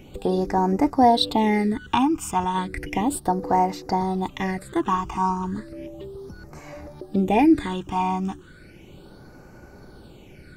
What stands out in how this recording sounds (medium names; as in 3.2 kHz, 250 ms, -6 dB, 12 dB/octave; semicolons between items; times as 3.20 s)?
phasing stages 8, 0.34 Hz, lowest notch 540–3300 Hz